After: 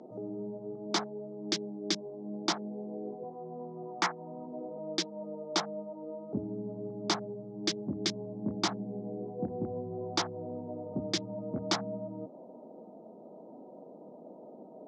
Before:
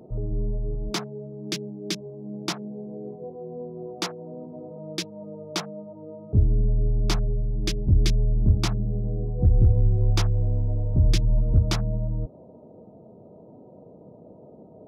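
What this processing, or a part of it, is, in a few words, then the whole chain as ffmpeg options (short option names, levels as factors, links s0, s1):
television speaker: -filter_complex "[0:a]highpass=f=220:w=0.5412,highpass=f=220:w=1.3066,equalizer=f=430:t=q:w=4:g=-4,equalizer=f=820:t=q:w=4:g=4,equalizer=f=2600:t=q:w=4:g=-8,lowpass=f=6900:w=0.5412,lowpass=f=6900:w=1.3066,asettb=1/sr,asplit=3[s0][s1][s2];[s0]atrim=end=3.234[s3];[s1]atrim=start=3.23:end=4.48,asetpts=PTS-STARTPTS,afade=t=in:d=0.004:c=qsin,afade=t=out:st=1.246:d=0.004:c=qsin,equalizer=f=125:t=o:w=1:g=9,equalizer=f=250:t=o:w=1:g=-4,equalizer=f=500:t=o:w=1:g=-7,equalizer=f=1000:t=o:w=1:g=5,equalizer=f=2000:t=o:w=1:g=8,equalizer=f=4000:t=o:w=1:g=-7[s4];[s2]atrim=start=4.476[s5];[s3][s4]acrossfade=d=0.004:c1=hsin:c2=qsin[s6];[s6][s5]acrossfade=d=0.004:c1=qsin:c2=hsin"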